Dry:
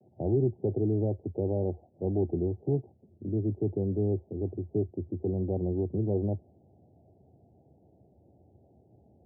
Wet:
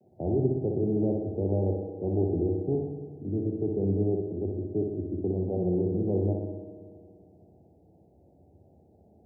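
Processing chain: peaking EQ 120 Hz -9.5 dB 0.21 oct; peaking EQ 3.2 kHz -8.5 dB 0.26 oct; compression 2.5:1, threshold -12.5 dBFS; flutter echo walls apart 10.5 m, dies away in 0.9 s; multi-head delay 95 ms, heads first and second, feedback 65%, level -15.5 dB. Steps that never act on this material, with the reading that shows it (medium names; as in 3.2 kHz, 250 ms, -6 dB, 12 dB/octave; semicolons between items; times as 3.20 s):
peaking EQ 3.2 kHz: input has nothing above 760 Hz; compression, threshold -12.5 dBFS: peak at its input -17.0 dBFS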